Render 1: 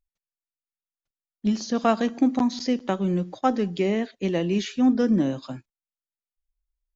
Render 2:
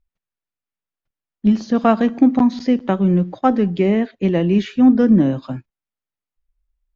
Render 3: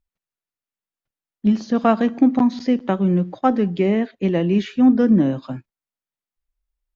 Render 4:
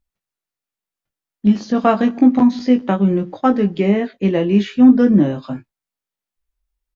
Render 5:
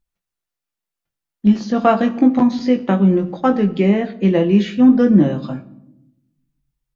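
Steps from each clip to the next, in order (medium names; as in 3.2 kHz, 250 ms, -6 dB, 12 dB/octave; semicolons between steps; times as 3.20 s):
tone controls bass +5 dB, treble -15 dB; trim +5.5 dB
bass shelf 69 Hz -8 dB; trim -1.5 dB
doubling 20 ms -5.5 dB; trim +2 dB
simulated room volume 2500 m³, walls furnished, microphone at 0.82 m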